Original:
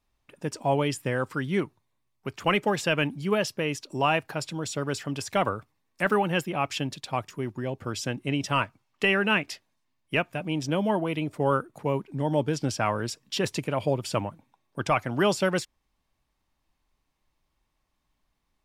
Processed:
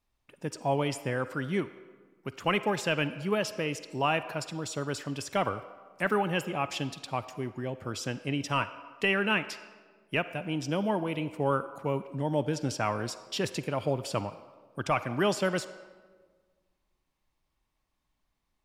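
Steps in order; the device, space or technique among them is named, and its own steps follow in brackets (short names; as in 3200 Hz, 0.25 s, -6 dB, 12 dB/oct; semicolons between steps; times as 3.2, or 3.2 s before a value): filtered reverb send (on a send: HPF 380 Hz 12 dB/oct + LPF 8400 Hz + reverb RT60 1.5 s, pre-delay 41 ms, DRR 12.5 dB); on the sum: gain -3.5 dB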